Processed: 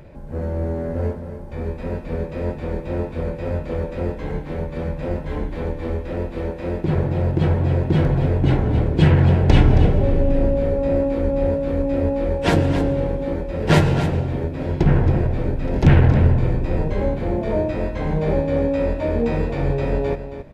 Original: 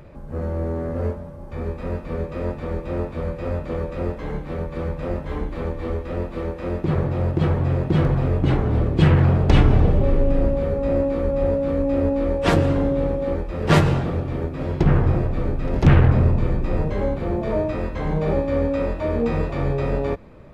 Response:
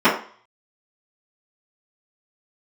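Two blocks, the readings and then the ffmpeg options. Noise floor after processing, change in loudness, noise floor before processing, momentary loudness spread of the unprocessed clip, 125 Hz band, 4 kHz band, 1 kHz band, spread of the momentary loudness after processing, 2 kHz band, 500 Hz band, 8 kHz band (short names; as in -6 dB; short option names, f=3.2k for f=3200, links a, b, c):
-32 dBFS, +1.0 dB, -35 dBFS, 12 LU, +1.5 dB, +1.5 dB, 0.0 dB, 12 LU, +1.0 dB, +1.0 dB, n/a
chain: -af "bandreject=f=1.2k:w=5.2,aecho=1:1:272:0.299,volume=1dB"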